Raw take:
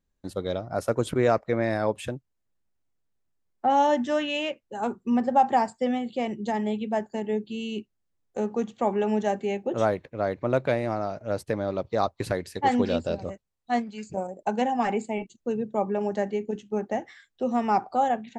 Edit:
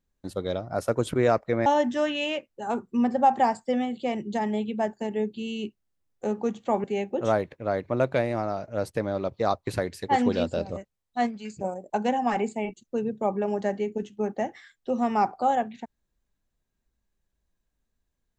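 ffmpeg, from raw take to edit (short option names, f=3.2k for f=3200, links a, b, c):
-filter_complex "[0:a]asplit=3[a][b][c];[a]atrim=end=1.662[d];[b]atrim=start=3.788:end=8.972[e];[c]atrim=start=9.368[f];[d][e]acrossfade=d=0.004:c1=hsin:c2=hsin[g];[g][f]acrossfade=d=0.004:c1=hsin:c2=hsin"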